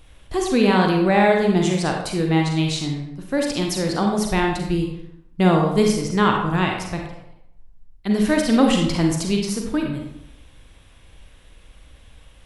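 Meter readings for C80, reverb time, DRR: 6.0 dB, 0.75 s, 1.0 dB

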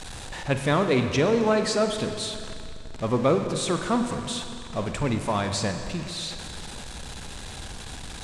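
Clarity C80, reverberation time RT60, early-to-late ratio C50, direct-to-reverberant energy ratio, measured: 7.5 dB, 2.5 s, 7.0 dB, 6.0 dB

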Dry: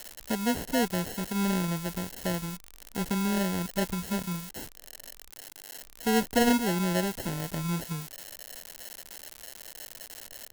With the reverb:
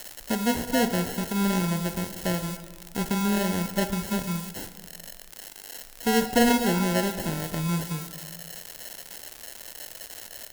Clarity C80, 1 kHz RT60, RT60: 11.5 dB, 1.6 s, 1.6 s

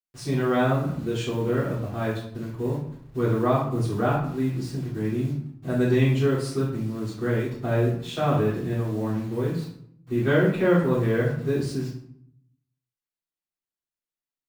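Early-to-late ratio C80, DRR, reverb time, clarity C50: 7.0 dB, −11.0 dB, 0.65 s, 3.0 dB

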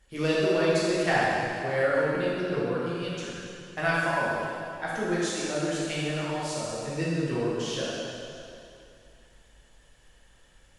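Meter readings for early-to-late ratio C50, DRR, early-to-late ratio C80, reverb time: −3.5 dB, −8.0 dB, −1.5 dB, 2.6 s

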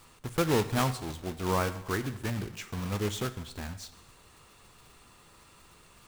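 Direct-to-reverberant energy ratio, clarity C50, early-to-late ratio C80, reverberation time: 11.0 dB, 13.5 dB, 16.0 dB, 0.90 s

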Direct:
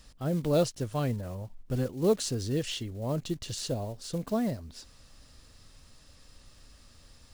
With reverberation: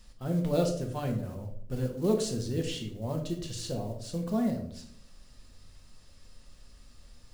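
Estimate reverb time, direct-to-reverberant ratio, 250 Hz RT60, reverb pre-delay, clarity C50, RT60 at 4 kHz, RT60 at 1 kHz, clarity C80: 0.65 s, 2.0 dB, 0.95 s, 4 ms, 8.0 dB, 0.40 s, 0.55 s, 11.5 dB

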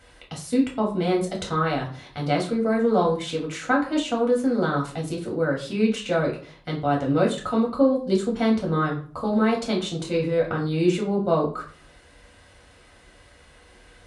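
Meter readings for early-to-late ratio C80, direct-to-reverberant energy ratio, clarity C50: 13.5 dB, −2.0 dB, 9.0 dB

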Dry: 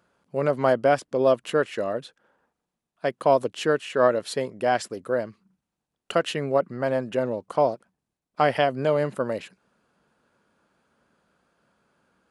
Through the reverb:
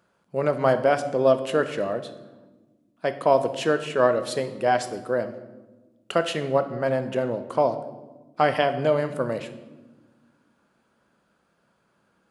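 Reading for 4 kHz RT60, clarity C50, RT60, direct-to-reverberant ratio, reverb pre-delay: 0.85 s, 12.0 dB, 1.3 s, 8.5 dB, 5 ms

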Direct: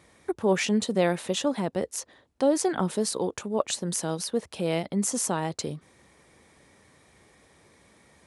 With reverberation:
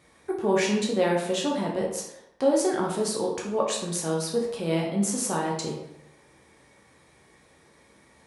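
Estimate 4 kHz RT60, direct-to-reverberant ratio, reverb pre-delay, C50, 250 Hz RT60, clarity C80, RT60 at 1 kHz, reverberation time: 0.55 s, −2.5 dB, 9 ms, 3.5 dB, 0.80 s, 7.5 dB, 0.85 s, 0.85 s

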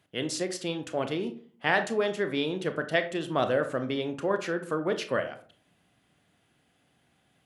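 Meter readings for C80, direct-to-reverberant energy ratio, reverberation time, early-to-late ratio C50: 17.0 dB, 7.5 dB, 0.45 s, 12.0 dB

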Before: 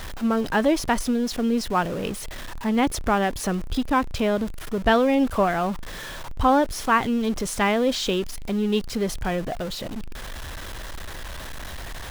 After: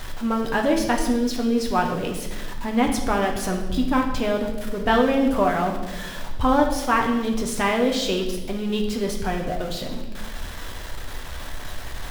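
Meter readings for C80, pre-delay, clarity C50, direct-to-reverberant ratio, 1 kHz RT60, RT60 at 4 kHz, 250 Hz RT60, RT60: 8.5 dB, 7 ms, 6.0 dB, 1.0 dB, 0.95 s, 1.0 s, 1.6 s, 1.2 s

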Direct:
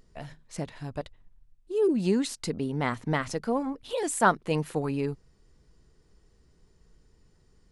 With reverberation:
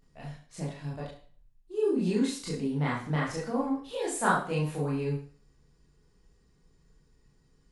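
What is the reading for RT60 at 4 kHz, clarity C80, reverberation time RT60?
0.45 s, 10.0 dB, 0.45 s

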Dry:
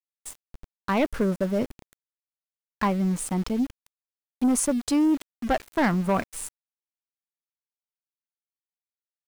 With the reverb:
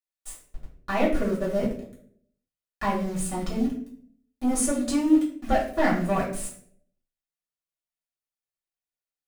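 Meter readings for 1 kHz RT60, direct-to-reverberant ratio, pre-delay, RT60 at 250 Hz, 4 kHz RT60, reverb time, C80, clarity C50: 0.45 s, −6.5 dB, 3 ms, 0.80 s, 0.40 s, 0.60 s, 11.0 dB, 6.0 dB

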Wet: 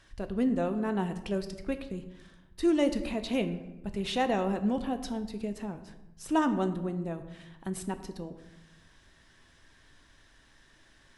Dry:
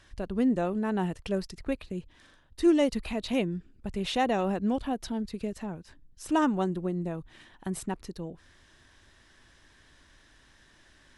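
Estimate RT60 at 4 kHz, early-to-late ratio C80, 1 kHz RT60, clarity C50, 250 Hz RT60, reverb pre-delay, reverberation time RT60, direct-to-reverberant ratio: 0.60 s, 13.5 dB, 0.90 s, 11.5 dB, 1.3 s, 4 ms, 0.95 s, 8.0 dB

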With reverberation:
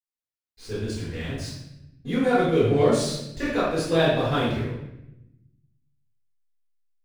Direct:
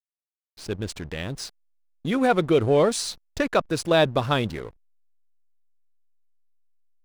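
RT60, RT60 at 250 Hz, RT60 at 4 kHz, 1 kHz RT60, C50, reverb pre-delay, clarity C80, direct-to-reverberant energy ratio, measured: 0.90 s, 1.4 s, 0.70 s, 0.80 s, 0.0 dB, 3 ms, 3.5 dB, −11.0 dB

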